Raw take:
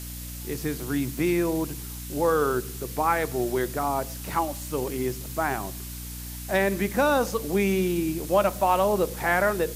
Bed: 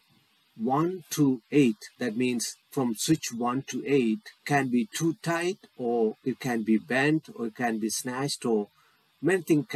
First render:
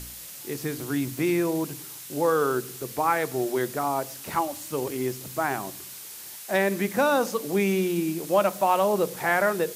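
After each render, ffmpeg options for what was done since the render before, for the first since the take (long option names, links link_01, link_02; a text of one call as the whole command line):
ffmpeg -i in.wav -af "bandreject=frequency=60:width_type=h:width=4,bandreject=frequency=120:width_type=h:width=4,bandreject=frequency=180:width_type=h:width=4,bandreject=frequency=240:width_type=h:width=4,bandreject=frequency=300:width_type=h:width=4" out.wav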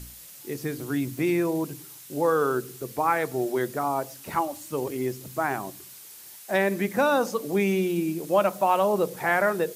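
ffmpeg -i in.wav -af "afftdn=noise_reduction=6:noise_floor=-41" out.wav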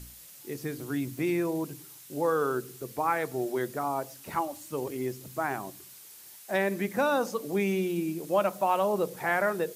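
ffmpeg -i in.wav -af "volume=-4dB" out.wav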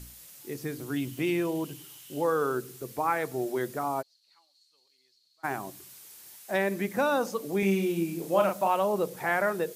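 ffmpeg -i in.wav -filter_complex "[0:a]asettb=1/sr,asplit=3[link_01][link_02][link_03];[link_01]atrim=end=0.964[link_04];[link_02]atrim=start=0.96:end=2.24,asetpts=PTS-STARTPTS,afade=type=in:duration=0.004:curve=qsin,afade=type=out:start_time=1.276:duration=0.004:curve=qsin,equalizer=frequency=3000:width_type=o:width=0.27:gain=13.5[link_05];[link_03]atrim=start=2.236[link_06];[link_04][link_05]acrossfade=duration=0.004:curve1=hsin:curve2=qsin[link_07];[link_07][link_06]acrossfade=duration=0.004:curve1=qsin:curve2=hsin,asplit=3[link_08][link_09][link_10];[link_08]afade=type=out:start_time=4.01:duration=0.02[link_11];[link_09]bandpass=frequency=4300:width_type=q:width=16,afade=type=in:start_time=4.01:duration=0.02,afade=type=out:start_time=5.43:duration=0.02[link_12];[link_10]afade=type=in:start_time=5.43:duration=0.02[link_13];[link_11][link_12][link_13]amix=inputs=3:normalize=0,asettb=1/sr,asplit=3[link_14][link_15][link_16];[link_14]atrim=end=7.594[link_17];[link_15]atrim=start=7.59:end=8.68,asetpts=PTS-STARTPTS,afade=type=in:duration=0.004:curve=qsin,afade=type=out:start_time=1.086:duration=0.004:curve=qsin,asplit=2[link_18][link_19];[link_19]adelay=36,volume=-4dB[link_20];[link_18][link_20]amix=inputs=2:normalize=0,atrim=end_sample=48069[link_21];[link_16]atrim=start=8.676[link_22];[link_17][link_21]acrossfade=duration=0.004:curve1=hsin:curve2=qsin[link_23];[link_23][link_22]acrossfade=duration=0.004:curve1=qsin:curve2=hsin" out.wav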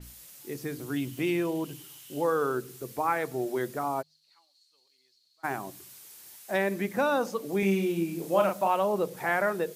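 ffmpeg -i in.wav -af "bandreject=frequency=51.47:width_type=h:width=4,bandreject=frequency=102.94:width_type=h:width=4,bandreject=frequency=154.41:width_type=h:width=4,adynamicequalizer=threshold=0.00447:dfrequency=5000:dqfactor=0.7:tfrequency=5000:tqfactor=0.7:attack=5:release=100:ratio=0.375:range=2:mode=cutabove:tftype=highshelf" out.wav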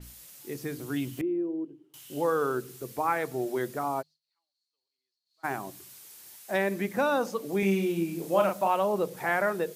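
ffmpeg -i in.wav -filter_complex "[0:a]asettb=1/sr,asplit=3[link_01][link_02][link_03];[link_01]atrim=end=1.214[link_04];[link_02]atrim=start=1.21:end=1.94,asetpts=PTS-STARTPTS,afade=type=in:duration=0.004:curve=qsin,afade=type=out:start_time=0.726:duration=0.004:curve=qsin,bandpass=frequency=330:width_type=q:width=3.9[link_05];[link_03]atrim=start=1.936[link_06];[link_04][link_05]acrossfade=duration=0.004:curve1=hsin:curve2=qsin[link_07];[link_07][link_06]acrossfade=duration=0.004:curve1=qsin:curve2=hsin,asplit=3[link_08][link_09][link_10];[link_08]atrim=end=4.19,asetpts=PTS-STARTPTS,afade=type=out:start_time=3.98:duration=0.21:silence=0.105925[link_11];[link_09]atrim=start=4.19:end=5.25,asetpts=PTS-STARTPTS,volume=-19.5dB[link_12];[link_10]atrim=start=5.25,asetpts=PTS-STARTPTS,afade=type=in:duration=0.21:silence=0.105925[link_13];[link_11][link_12][link_13]concat=n=3:v=0:a=1" out.wav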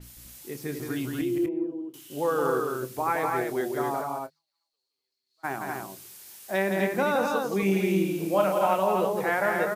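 ffmpeg -i in.wav -filter_complex "[0:a]asplit=2[link_01][link_02];[link_02]adelay=26,volume=-12.5dB[link_03];[link_01][link_03]amix=inputs=2:normalize=0,aecho=1:1:169.1|247.8:0.562|0.631" out.wav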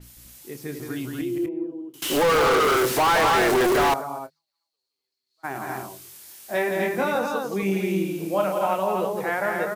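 ffmpeg -i in.wav -filter_complex "[0:a]asettb=1/sr,asplit=3[link_01][link_02][link_03];[link_01]atrim=end=2.024[link_04];[link_02]atrim=start=2.02:end=3.94,asetpts=PTS-STARTPTS,afade=type=in:duration=0.004:curve=qsin,afade=type=out:start_time=1.916:duration=0.004:curve=qsin,asplit=2[link_05][link_06];[link_06]highpass=frequency=720:poles=1,volume=38dB,asoftclip=type=tanh:threshold=-12.5dB[link_07];[link_05][link_07]amix=inputs=2:normalize=0,lowpass=frequency=3700:poles=1,volume=-6dB[link_08];[link_03]atrim=start=3.936[link_09];[link_04][link_08]acrossfade=duration=0.004:curve1=hsin:curve2=qsin[link_10];[link_10][link_09]acrossfade=duration=0.004:curve1=qsin:curve2=hsin,asettb=1/sr,asplit=3[link_11][link_12][link_13];[link_11]atrim=end=5.534[link_14];[link_12]atrim=start=5.53:end=7.19,asetpts=PTS-STARTPTS,afade=type=in:duration=0.004:curve=qsin,afade=type=out:start_time=1.656:duration=0.004:curve=qsin,asplit=2[link_15][link_16];[link_16]adelay=23,volume=-2.5dB[link_17];[link_15][link_17]amix=inputs=2:normalize=0,atrim=end_sample=73206[link_18];[link_13]atrim=start=7.186[link_19];[link_14][link_18]acrossfade=duration=0.004:curve1=hsin:curve2=qsin[link_20];[link_20][link_19]acrossfade=duration=0.004:curve1=qsin:curve2=hsin" out.wav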